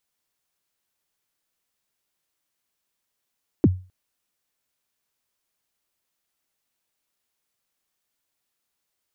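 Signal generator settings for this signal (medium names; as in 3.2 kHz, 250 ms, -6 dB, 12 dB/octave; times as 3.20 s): kick drum length 0.26 s, from 390 Hz, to 92 Hz, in 37 ms, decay 0.33 s, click off, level -8.5 dB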